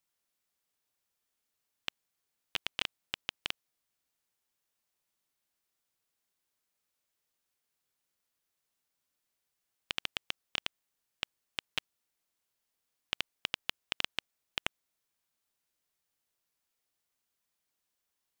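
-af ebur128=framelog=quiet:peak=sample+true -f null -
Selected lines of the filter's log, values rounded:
Integrated loudness:
  I:         -38.8 LUFS
  Threshold: -48.8 LUFS
Loudness range:
  LRA:         7.1 LU
  Threshold: -61.9 LUFS
  LRA low:   -46.9 LUFS
  LRA high:  -39.8 LUFS
Sample peak:
  Peak:      -10.4 dBFS
True peak:
  Peak:      -10.0 dBFS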